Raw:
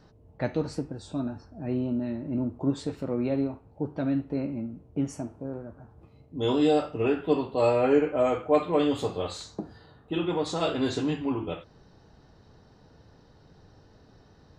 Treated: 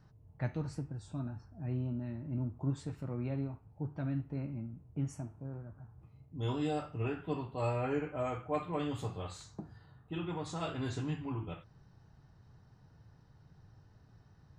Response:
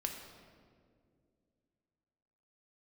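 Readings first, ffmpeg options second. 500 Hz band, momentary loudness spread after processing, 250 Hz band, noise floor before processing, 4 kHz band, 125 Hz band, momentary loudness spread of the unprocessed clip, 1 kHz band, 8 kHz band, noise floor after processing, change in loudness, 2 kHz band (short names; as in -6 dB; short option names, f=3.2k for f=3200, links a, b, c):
-14.0 dB, 12 LU, -11.0 dB, -57 dBFS, -12.5 dB, -1.0 dB, 14 LU, -9.0 dB, -8.5 dB, -63 dBFS, -10.0 dB, -8.5 dB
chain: -af "equalizer=f=125:t=o:w=1:g=8,equalizer=f=250:t=o:w=1:g=-5,equalizer=f=500:t=o:w=1:g=-8,equalizer=f=4k:t=o:w=1:g=-7,volume=-6.5dB"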